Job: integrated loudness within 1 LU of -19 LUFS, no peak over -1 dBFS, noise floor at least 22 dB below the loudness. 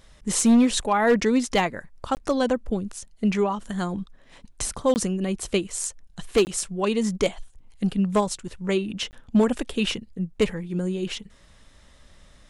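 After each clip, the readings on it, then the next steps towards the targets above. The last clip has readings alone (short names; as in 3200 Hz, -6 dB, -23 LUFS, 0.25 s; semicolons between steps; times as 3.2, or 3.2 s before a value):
clipped 0.5%; flat tops at -12.5 dBFS; dropouts 4; longest dropout 19 ms; loudness -24.5 LUFS; peak -12.5 dBFS; loudness target -19.0 LUFS
-> clip repair -12.5 dBFS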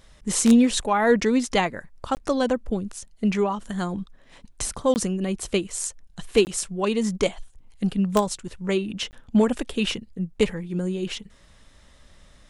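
clipped 0.0%; dropouts 4; longest dropout 19 ms
-> interpolate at 2.15/4.94/6.45/9.11, 19 ms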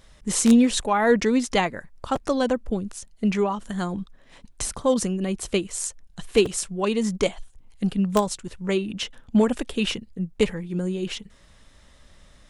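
dropouts 0; loudness -24.5 LUFS; peak -3.5 dBFS; loudness target -19.0 LUFS
-> gain +5.5 dB; limiter -1 dBFS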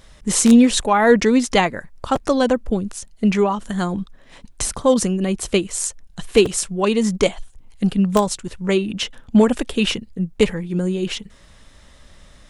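loudness -19.0 LUFS; peak -1.0 dBFS; noise floor -48 dBFS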